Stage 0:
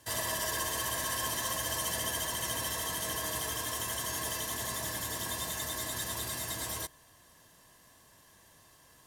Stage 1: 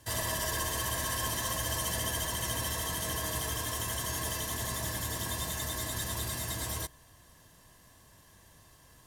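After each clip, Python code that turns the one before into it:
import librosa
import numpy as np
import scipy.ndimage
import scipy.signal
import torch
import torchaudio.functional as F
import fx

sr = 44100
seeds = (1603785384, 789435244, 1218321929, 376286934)

y = fx.low_shelf(x, sr, hz=140.0, db=11.0)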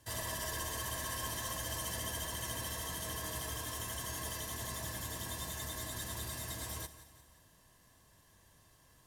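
y = fx.echo_feedback(x, sr, ms=176, feedback_pct=49, wet_db=-14.5)
y = F.gain(torch.from_numpy(y), -6.5).numpy()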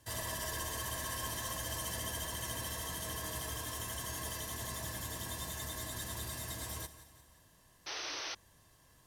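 y = fx.spec_paint(x, sr, seeds[0], shape='noise', start_s=7.86, length_s=0.49, low_hz=280.0, high_hz=6300.0, level_db=-41.0)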